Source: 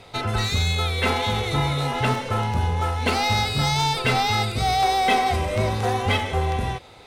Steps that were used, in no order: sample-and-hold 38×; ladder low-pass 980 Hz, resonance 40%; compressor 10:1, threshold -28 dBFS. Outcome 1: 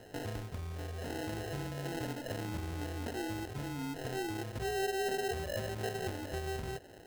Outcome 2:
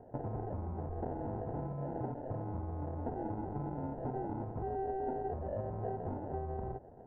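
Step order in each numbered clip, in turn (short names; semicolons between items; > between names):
compressor > ladder low-pass > sample-and-hold; sample-and-hold > compressor > ladder low-pass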